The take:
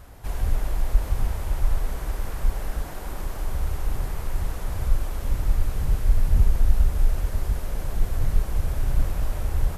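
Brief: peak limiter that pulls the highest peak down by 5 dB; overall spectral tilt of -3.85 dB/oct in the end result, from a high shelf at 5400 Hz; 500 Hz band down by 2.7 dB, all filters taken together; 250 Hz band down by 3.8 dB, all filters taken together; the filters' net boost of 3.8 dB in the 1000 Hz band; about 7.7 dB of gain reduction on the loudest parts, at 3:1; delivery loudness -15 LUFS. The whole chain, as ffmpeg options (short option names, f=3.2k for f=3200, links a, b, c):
-af "equalizer=f=250:t=o:g=-5.5,equalizer=f=500:t=o:g=-4,equalizer=f=1k:t=o:g=6,highshelf=f=5.4k:g=7.5,acompressor=threshold=-22dB:ratio=3,volume=18.5dB,alimiter=limit=-0.5dB:level=0:latency=1"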